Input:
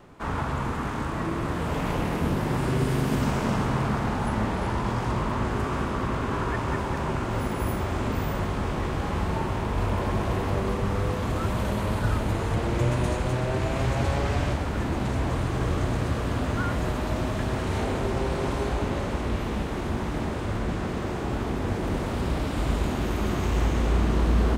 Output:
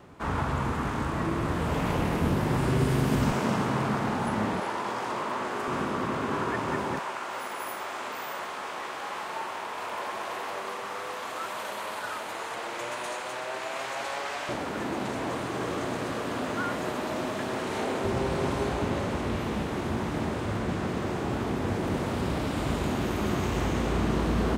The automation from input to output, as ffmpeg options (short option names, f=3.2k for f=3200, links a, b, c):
-af "asetnsamples=n=441:p=0,asendcmd='3.32 highpass f 150;4.6 highpass f 400;5.68 highpass f 180;6.99 highpass f 730;14.49 highpass f 250;18.04 highpass f 93',highpass=43"